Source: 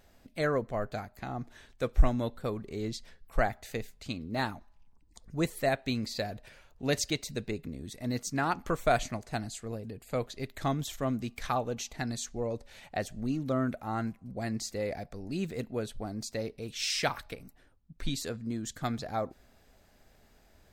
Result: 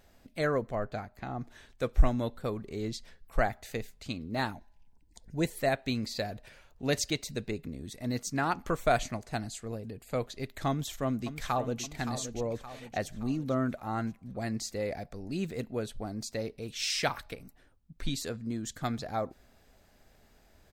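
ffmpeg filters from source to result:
-filter_complex "[0:a]asettb=1/sr,asplit=3[s0][s1][s2];[s0]atrim=end=0.754[s3];[s1]atrim=start=0.75:end=1.41,asetpts=PTS-STARTPTS,afade=t=in:d=0.004:c=qsin,afade=t=out:st=0.656:d=0.004:c=qsin,highshelf=f=5700:g=-10[s4];[s2]atrim=start=1.406[s5];[s3][s4]acrossfade=d=0.004:c1=hsin:c2=qsin[s6];[s6][s5]acrossfade=d=0.004:c1=qsin:c2=hsin,asettb=1/sr,asplit=3[s7][s8][s9];[s7]atrim=end=4.524[s10];[s8]atrim=start=4.52:end=5.55,asetpts=PTS-STARTPTS,afade=t=in:d=0.004:c=qsin,afade=t=out:st=1.026:d=0.004:c=qsin,asuperstop=centerf=1200:order=4:qfactor=3.4[s11];[s9]atrim=start=5.546[s12];[s10][s11]acrossfade=d=0.004:c1=hsin:c2=qsin[s13];[s13][s12]acrossfade=d=0.004:c1=qsin:c2=hsin,asplit=2[s14][s15];[s15]afade=t=in:st=10.69:d=0.01,afade=t=out:st=11.83:d=0.01,aecho=0:1:570|1140|1710|2280|2850:0.316228|0.158114|0.0790569|0.0395285|0.0197642[s16];[s14][s16]amix=inputs=2:normalize=0"

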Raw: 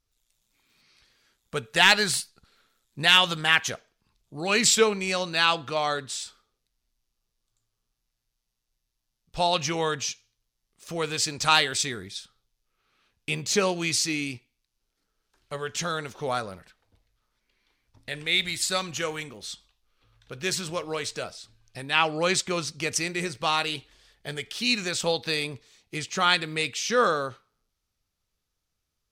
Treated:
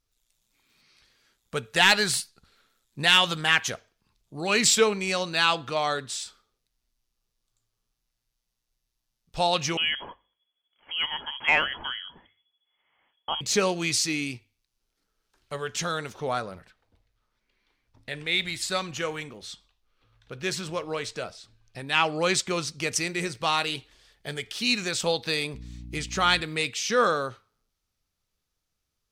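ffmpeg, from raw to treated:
-filter_complex "[0:a]asettb=1/sr,asplit=3[s0][s1][s2];[s0]atrim=end=9.774[s3];[s1]atrim=start=9.77:end=13.41,asetpts=PTS-STARTPTS,afade=t=in:d=0.004:c=qsin,afade=t=out:st=3.636:d=0.004:c=qsin,lowpass=f=2900:t=q:w=0.5098,lowpass=f=2900:t=q:w=0.6013,lowpass=f=2900:t=q:w=0.9,lowpass=f=2900:t=q:w=2.563,afreqshift=-3400[s4];[s2]atrim=start=13.406[s5];[s3][s4]acrossfade=d=0.004:c1=hsin:c2=qsin[s6];[s6][s5]acrossfade=d=0.004:c1=qsin:c2=hsin,asettb=1/sr,asplit=3[s7][s8][s9];[s7]atrim=end=16.204[s10];[s8]atrim=start=16.2:end=21.87,asetpts=PTS-STARTPTS,afade=t=in:d=0.004:c=qsin,afade=t=out:st=5.666:d=0.004:c=qsin,highshelf=f=4800:g=-7[s11];[s9]atrim=start=21.866[s12];[s10][s11]acrossfade=d=0.004:c1=hsin:c2=qsin[s13];[s13][s12]acrossfade=d=0.004:c1=qsin:c2=hsin,asettb=1/sr,asplit=3[s14][s15][s16];[s14]atrim=end=25.544[s17];[s15]atrim=start=25.54:end=26.41,asetpts=PTS-STARTPTS,afade=t=in:d=0.004:c=qsin,afade=t=out:st=0.866:d=0.004:c=qsin,aeval=exprs='val(0)+0.0112*(sin(2*PI*60*n/s)+sin(2*PI*2*60*n/s)/2+sin(2*PI*3*60*n/s)/3+sin(2*PI*4*60*n/s)/4+sin(2*PI*5*60*n/s)/5)':c=same[s18];[s16]atrim=start=26.406[s19];[s17][s18]acrossfade=d=0.004:c1=hsin:c2=qsin[s20];[s20][s19]acrossfade=d=0.004:c1=qsin:c2=hsin,bandreject=f=50:t=h:w=6,bandreject=f=100:t=h:w=6,acontrast=29,volume=0.562"

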